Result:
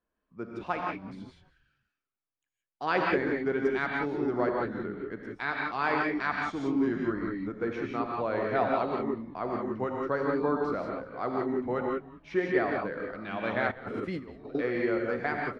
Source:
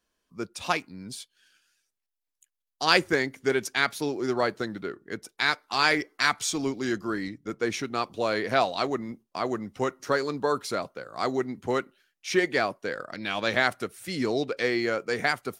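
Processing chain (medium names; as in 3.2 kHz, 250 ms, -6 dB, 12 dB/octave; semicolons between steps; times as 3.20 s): gated-style reverb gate 200 ms rising, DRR -0.5 dB; 13.71–14.55 s: compressor with a negative ratio -32 dBFS, ratio -0.5; low-pass 1.6 kHz 12 dB/octave; frequency-shifting echo 196 ms, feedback 35%, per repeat -110 Hz, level -19 dB; trim -4.5 dB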